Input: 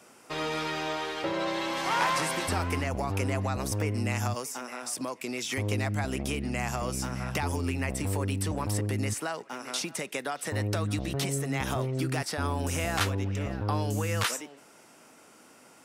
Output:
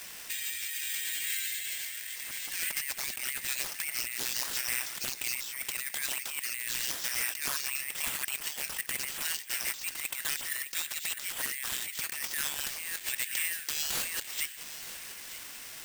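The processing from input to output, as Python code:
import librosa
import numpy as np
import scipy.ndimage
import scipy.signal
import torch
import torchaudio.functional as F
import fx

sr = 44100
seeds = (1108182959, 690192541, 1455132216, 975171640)

p1 = scipy.signal.sosfilt(scipy.signal.butter(12, 1700.0, 'highpass', fs=sr, output='sos'), x)
p2 = fx.over_compress(p1, sr, threshold_db=-45.0, ratio=-1.0)
p3 = np.clip(p2, -10.0 ** (-33.0 / 20.0), 10.0 ** (-33.0 / 20.0))
p4 = p3 + fx.echo_single(p3, sr, ms=923, db=-14.5, dry=0)
p5 = (np.kron(p4[::4], np.eye(4)[0]) * 4)[:len(p4)]
p6 = fx.doppler_dist(p5, sr, depth_ms=0.41)
y = p6 * 10.0 ** (5.5 / 20.0)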